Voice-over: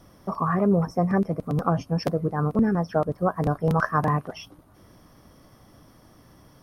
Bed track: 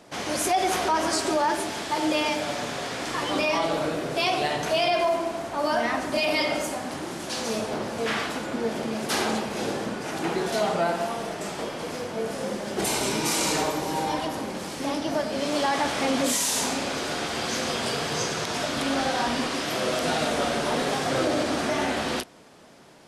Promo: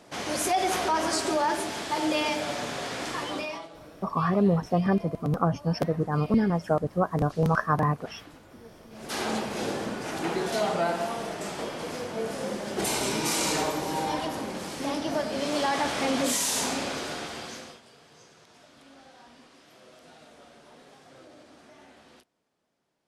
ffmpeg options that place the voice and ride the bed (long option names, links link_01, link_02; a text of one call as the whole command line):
ffmpeg -i stem1.wav -i stem2.wav -filter_complex "[0:a]adelay=3750,volume=-1.5dB[link_01];[1:a]volume=18dB,afade=type=out:start_time=3.04:duration=0.65:silence=0.1,afade=type=in:start_time=8.9:duration=0.47:silence=0.1,afade=type=out:start_time=16.8:duration=1.01:silence=0.0562341[link_02];[link_01][link_02]amix=inputs=2:normalize=0" out.wav